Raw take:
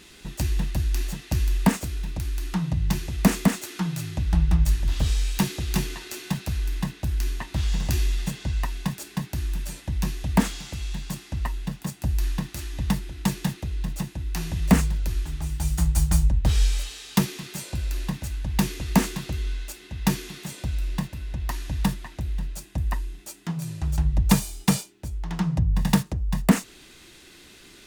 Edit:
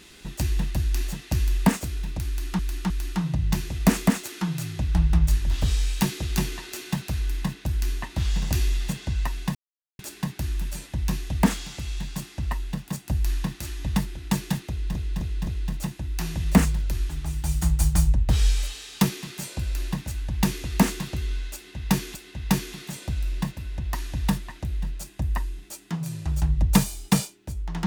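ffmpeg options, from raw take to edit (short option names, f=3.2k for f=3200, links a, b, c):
-filter_complex "[0:a]asplit=8[a][b][c][d][e][f][g][h];[a]atrim=end=2.592[i];[b]atrim=start=2.278:end=2.592[j];[c]atrim=start=2.278:end=8.93,asetpts=PTS-STARTPTS,afade=t=out:st=6.648:d=0.004:c=hsin,apad=pad_dur=0.44[k];[d]atrim=start=8.93:end=13.892,asetpts=PTS-STARTPTS,afade=t=in:d=0.004:c=hsin[l];[e]atrim=start=13.628:end=13.892[m];[f]atrim=start=13.628:end=13.892[n];[g]atrim=start=13.628:end=20.312[o];[h]atrim=start=19.708[p];[i][j]acrossfade=d=0.004:c1=hsin:c2=hsin[q];[k][l]concat=n=2:v=0:a=1[r];[q][r]acrossfade=d=0.004:c1=hsin:c2=hsin[s];[s][m]acrossfade=d=0.004:c1=hsin:c2=hsin[t];[t][n]acrossfade=d=0.004:c1=hsin:c2=hsin[u];[u][o]acrossfade=d=0.004:c1=hsin:c2=hsin[v];[v][p]acrossfade=d=0.004:c1=hsin:c2=hsin"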